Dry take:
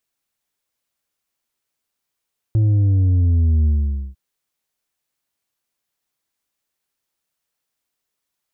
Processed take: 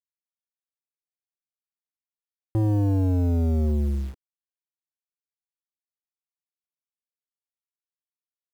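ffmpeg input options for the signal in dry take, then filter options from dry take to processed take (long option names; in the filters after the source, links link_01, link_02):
-f lavfi -i "aevalsrc='0.224*clip((1.6-t)/0.49,0,1)*tanh(1.78*sin(2*PI*110*1.6/log(65/110)*(exp(log(65/110)*t/1.6)-1)))/tanh(1.78)':duration=1.6:sample_rate=44100"
-af "aresample=8000,asoftclip=type=tanh:threshold=-21.5dB,aresample=44100,acrusher=bits=7:mix=0:aa=0.000001,equalizer=frequency=310:width_type=o:width=1:gain=7"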